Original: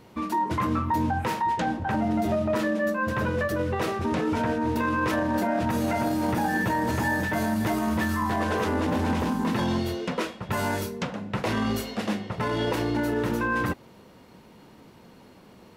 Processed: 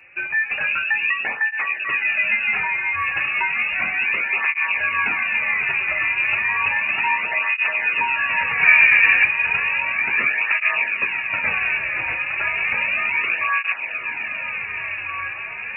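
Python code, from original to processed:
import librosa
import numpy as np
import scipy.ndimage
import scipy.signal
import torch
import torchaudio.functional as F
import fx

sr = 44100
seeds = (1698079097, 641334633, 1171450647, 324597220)

p1 = fx.small_body(x, sr, hz=(370.0, 920.0), ring_ms=25, db=16, at=(8.63, 9.26))
p2 = p1 + fx.echo_diffused(p1, sr, ms=1603, feedback_pct=64, wet_db=-7.0, dry=0)
p3 = fx.freq_invert(p2, sr, carrier_hz=2700)
p4 = fx.flanger_cancel(p3, sr, hz=0.33, depth_ms=4.9)
y = F.gain(torch.from_numpy(p4), 6.0).numpy()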